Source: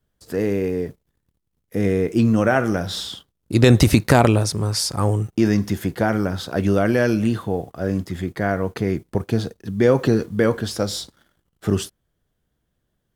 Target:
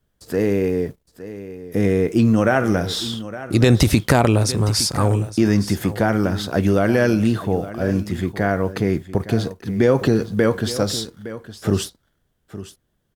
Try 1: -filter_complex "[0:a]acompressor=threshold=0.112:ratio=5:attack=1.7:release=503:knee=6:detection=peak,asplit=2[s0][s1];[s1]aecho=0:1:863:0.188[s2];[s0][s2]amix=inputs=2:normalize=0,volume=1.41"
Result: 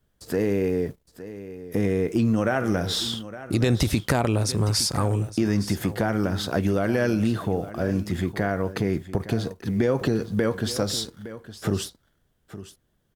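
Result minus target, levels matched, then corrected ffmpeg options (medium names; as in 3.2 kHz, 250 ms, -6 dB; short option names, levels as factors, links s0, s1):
compression: peak gain reduction +7.5 dB
-filter_complex "[0:a]acompressor=threshold=0.335:ratio=5:attack=1.7:release=503:knee=6:detection=peak,asplit=2[s0][s1];[s1]aecho=0:1:863:0.188[s2];[s0][s2]amix=inputs=2:normalize=0,volume=1.41"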